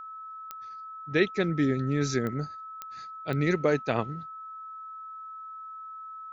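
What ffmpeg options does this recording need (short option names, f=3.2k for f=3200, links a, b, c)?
-af "adeclick=t=4,bandreject=f=1.3k:w=30"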